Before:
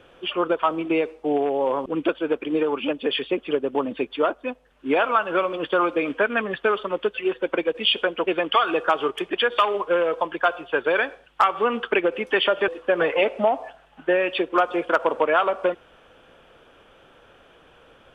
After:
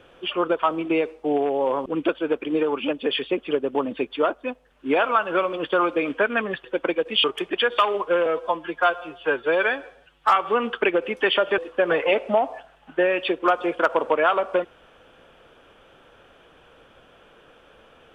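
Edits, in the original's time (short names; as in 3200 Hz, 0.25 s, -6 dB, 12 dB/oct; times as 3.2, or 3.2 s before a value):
6.64–7.33 cut
7.93–9.04 cut
10.06–11.46 stretch 1.5×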